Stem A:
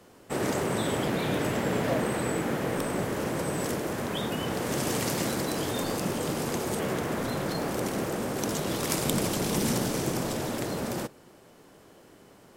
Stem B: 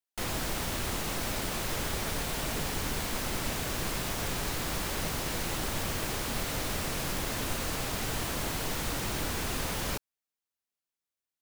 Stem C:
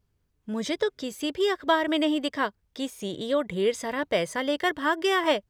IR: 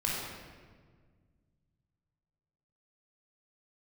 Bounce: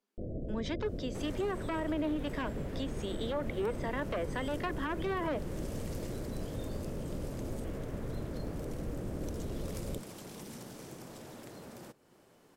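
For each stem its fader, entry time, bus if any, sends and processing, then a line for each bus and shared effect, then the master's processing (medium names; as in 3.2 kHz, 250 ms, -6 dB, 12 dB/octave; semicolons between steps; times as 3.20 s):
-8.5 dB, 0.85 s, no send, compression 2:1, threshold -44 dBFS, peak gain reduction 12 dB
-2.0 dB, 0.00 s, no send, comb filter that takes the minimum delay 0.33 ms; steep low-pass 640 Hz 72 dB/octave
-5.0 dB, 0.00 s, no send, one-sided wavefolder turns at -22 dBFS; low-pass that closes with the level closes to 1.6 kHz, closed at -22.5 dBFS; steep high-pass 200 Hz 96 dB/octave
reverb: none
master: peak limiter -25.5 dBFS, peak gain reduction 8 dB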